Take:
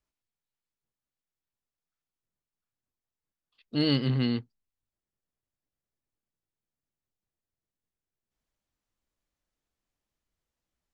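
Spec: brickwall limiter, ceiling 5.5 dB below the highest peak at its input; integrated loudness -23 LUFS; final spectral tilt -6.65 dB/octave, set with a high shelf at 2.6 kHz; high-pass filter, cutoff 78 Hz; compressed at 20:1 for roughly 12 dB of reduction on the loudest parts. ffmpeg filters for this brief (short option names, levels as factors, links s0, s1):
-af "highpass=78,highshelf=f=2600:g=-5,acompressor=threshold=0.0224:ratio=20,volume=7.94,alimiter=limit=0.237:level=0:latency=1"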